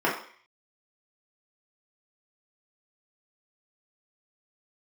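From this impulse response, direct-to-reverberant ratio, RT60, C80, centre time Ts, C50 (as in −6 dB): −6.5 dB, 0.50 s, 10.0 dB, 32 ms, 6.5 dB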